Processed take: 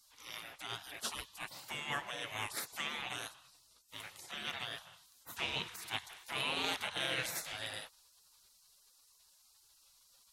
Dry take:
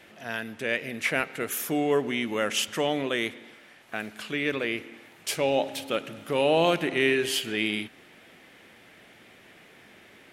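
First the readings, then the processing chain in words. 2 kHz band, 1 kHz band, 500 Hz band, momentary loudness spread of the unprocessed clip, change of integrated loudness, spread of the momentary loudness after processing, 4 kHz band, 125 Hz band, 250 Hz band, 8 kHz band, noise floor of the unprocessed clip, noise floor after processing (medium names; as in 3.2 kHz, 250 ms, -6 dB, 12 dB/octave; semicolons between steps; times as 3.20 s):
-11.0 dB, -11.0 dB, -22.5 dB, 12 LU, -12.0 dB, 13 LU, -7.0 dB, -14.0 dB, -22.5 dB, -9.0 dB, -54 dBFS, -67 dBFS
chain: spectral gate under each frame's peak -20 dB weak; loudspeaker Doppler distortion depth 0.13 ms; trim +1 dB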